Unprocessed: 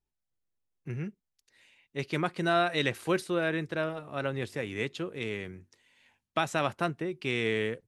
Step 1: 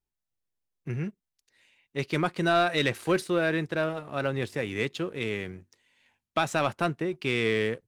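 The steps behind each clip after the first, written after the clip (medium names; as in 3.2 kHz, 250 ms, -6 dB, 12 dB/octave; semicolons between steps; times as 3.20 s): waveshaping leveller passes 1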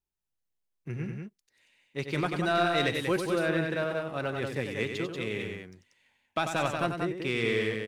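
loudspeakers at several distances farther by 32 m -7 dB, 64 m -5 dB; trim -3.5 dB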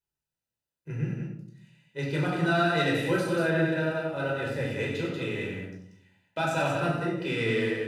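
comb of notches 1.1 kHz; simulated room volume 940 m³, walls furnished, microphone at 4.9 m; trim -4 dB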